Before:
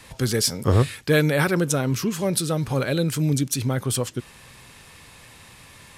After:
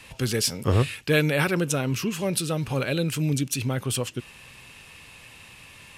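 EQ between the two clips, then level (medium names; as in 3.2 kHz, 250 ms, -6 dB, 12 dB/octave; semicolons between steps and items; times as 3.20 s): peaking EQ 2.7 kHz +10.5 dB 0.38 oct; -3.0 dB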